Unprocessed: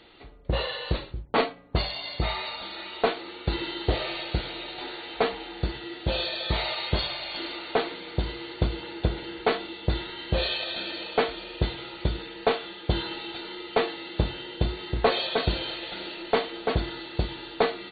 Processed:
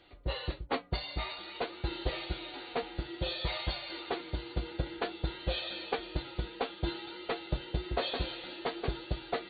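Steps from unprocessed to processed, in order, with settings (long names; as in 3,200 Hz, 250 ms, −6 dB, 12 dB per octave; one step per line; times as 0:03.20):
phase-vocoder stretch with locked phases 0.53×
flanger 0.54 Hz, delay 1.2 ms, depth 3.1 ms, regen +76%
notch comb filter 220 Hz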